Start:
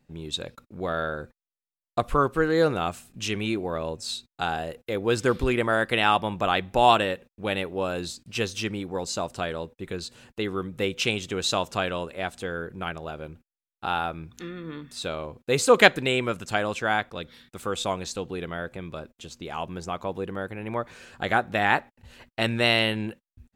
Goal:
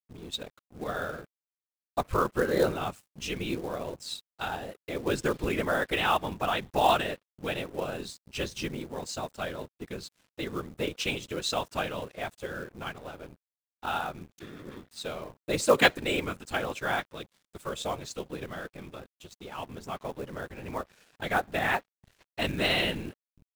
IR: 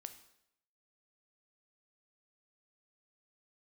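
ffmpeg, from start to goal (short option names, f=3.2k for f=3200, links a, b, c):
-af "afftfilt=real='hypot(re,im)*cos(2*PI*random(0))':imag='hypot(re,im)*sin(2*PI*random(1))':win_size=512:overlap=0.75,aeval=exprs='sgn(val(0))*max(abs(val(0))-0.00224,0)':c=same,acrusher=bits=5:mode=log:mix=0:aa=0.000001,volume=1.5dB"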